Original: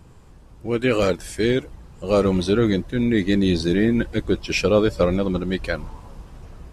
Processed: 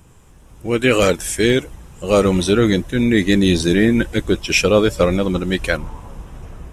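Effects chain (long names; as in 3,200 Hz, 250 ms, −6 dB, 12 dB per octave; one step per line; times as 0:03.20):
parametric band 4,500 Hz −11.5 dB 0.34 octaves
automatic gain control gain up to 7 dB
high-shelf EQ 2,700 Hz +10.5 dB, from 0:05.77 +2 dB
level −1 dB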